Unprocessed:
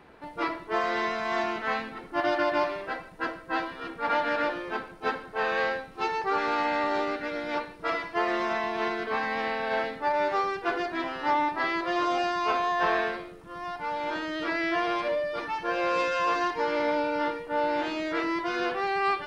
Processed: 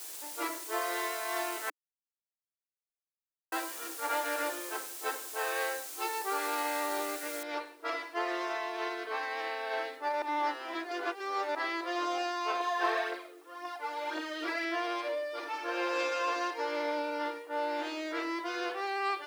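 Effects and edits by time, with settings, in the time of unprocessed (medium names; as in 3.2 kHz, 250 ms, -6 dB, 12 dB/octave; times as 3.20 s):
1.70–3.52 s: mute
7.43 s: noise floor step -43 dB -69 dB
10.22–11.55 s: reverse
12.60–14.65 s: phaser 1.9 Hz
15.37–16.01 s: reverb throw, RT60 2.8 s, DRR 1.5 dB
whole clip: dynamic bell 8.3 kHz, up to +4 dB, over -52 dBFS, Q 0.81; elliptic high-pass 300 Hz, stop band 40 dB; treble shelf 3.9 kHz +6.5 dB; trim -6.5 dB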